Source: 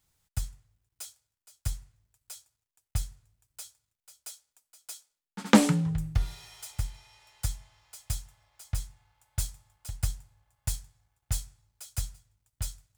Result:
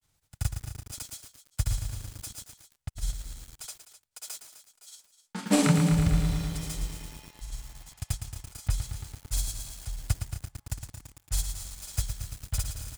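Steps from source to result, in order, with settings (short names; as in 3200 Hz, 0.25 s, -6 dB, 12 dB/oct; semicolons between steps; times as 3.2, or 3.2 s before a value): grains, pitch spread up and down by 0 st; on a send: echo 0.255 s -13.5 dB; on the sum: lo-fi delay 0.112 s, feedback 80%, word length 8-bit, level -7.5 dB; gain +4 dB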